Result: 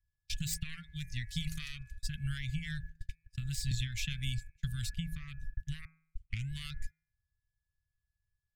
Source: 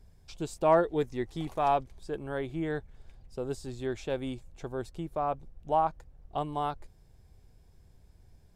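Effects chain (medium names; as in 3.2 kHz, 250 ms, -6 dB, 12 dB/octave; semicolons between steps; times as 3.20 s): tracing distortion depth 0.08 ms; reverb removal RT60 0.72 s; whistle 1.7 kHz -60 dBFS; gate -46 dBFS, range -39 dB; compression 16:1, threshold -36 dBFS, peak gain reduction 18.5 dB; 5.85 s: tape start 0.67 s; inverse Chebyshev band-stop 340–910 Hz, stop band 60 dB; de-hum 160 Hz, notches 16; 3.71–4.94 s: three bands compressed up and down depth 70%; trim +14 dB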